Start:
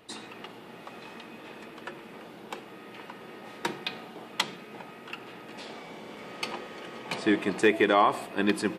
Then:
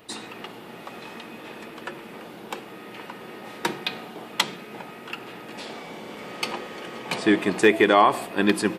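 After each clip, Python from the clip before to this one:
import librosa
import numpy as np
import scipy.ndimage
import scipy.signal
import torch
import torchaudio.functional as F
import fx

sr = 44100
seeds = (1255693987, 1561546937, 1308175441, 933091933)

y = fx.high_shelf(x, sr, hz=12000.0, db=7.5)
y = y * 10.0 ** (5.0 / 20.0)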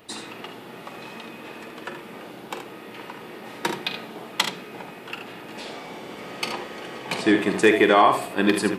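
y = fx.room_early_taps(x, sr, ms=(45, 76), db=(-11.0, -8.5))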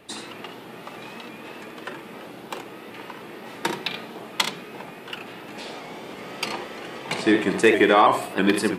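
y = fx.vibrato_shape(x, sr, shape='saw_up', rate_hz=3.1, depth_cents=100.0)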